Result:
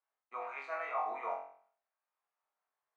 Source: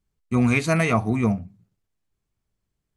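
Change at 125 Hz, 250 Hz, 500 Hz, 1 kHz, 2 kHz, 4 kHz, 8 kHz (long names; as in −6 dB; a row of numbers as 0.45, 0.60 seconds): below −40 dB, below −40 dB, −15.5 dB, −7.0 dB, −17.5 dB, below −25 dB, below −35 dB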